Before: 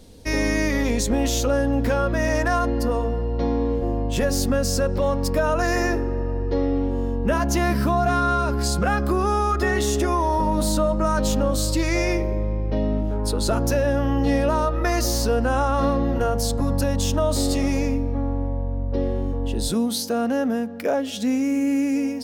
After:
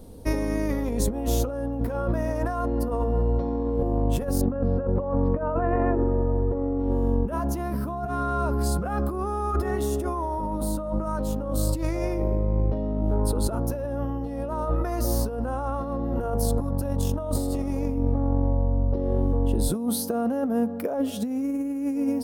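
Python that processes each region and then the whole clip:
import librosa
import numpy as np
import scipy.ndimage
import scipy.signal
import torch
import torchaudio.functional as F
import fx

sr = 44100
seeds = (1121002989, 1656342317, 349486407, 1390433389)

y = fx.chain(x, sr, fx.gaussian_blur(sigma=3.9),
    fx.hum_notches(base_hz=50, count=7), at=(4.41, 6.8))
y = fx.band_shelf(y, sr, hz=3500.0, db=-11.5, octaves=2.5)
y = fx.over_compress(y, sr, threshold_db=-24.0, ratio=-0.5)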